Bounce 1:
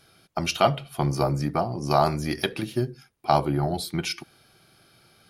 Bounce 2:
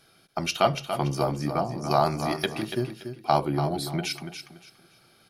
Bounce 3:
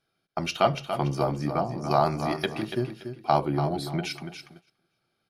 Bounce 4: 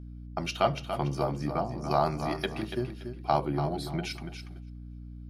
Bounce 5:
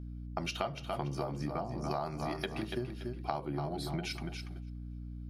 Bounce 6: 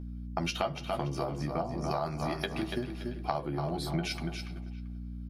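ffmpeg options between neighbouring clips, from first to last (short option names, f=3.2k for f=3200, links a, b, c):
-filter_complex "[0:a]equalizer=f=79:t=o:w=0.92:g=-7.5,asplit=2[a][b];[b]aecho=0:1:286|572|858:0.355|0.0923|0.024[c];[a][c]amix=inputs=2:normalize=0,volume=-1.5dB"
-af "agate=range=-16dB:threshold=-47dB:ratio=16:detection=peak,highshelf=f=5.4k:g=-9"
-af "aeval=exprs='val(0)+0.0126*(sin(2*PI*60*n/s)+sin(2*PI*2*60*n/s)/2+sin(2*PI*3*60*n/s)/3+sin(2*PI*4*60*n/s)/4+sin(2*PI*5*60*n/s)/5)':c=same,volume=-3.5dB"
-af "acompressor=threshold=-32dB:ratio=6"
-filter_complex "[0:a]asplit=2[a][b];[b]adelay=12,volume=-7dB[c];[a][c]amix=inputs=2:normalize=0,asplit=2[d][e];[e]adelay=390,highpass=300,lowpass=3.4k,asoftclip=type=hard:threshold=-27dB,volume=-16dB[f];[d][f]amix=inputs=2:normalize=0,volume=3dB"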